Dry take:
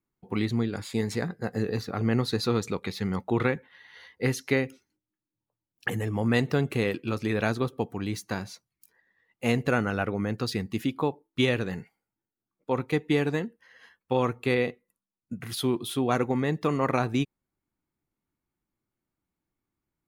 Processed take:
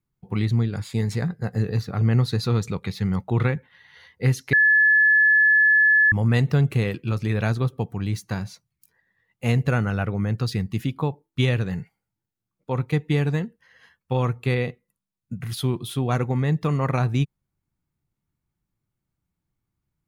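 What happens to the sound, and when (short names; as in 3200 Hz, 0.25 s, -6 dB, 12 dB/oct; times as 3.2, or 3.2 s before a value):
4.53–6.12 bleep 1720 Hz -13 dBFS
whole clip: resonant low shelf 200 Hz +8 dB, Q 1.5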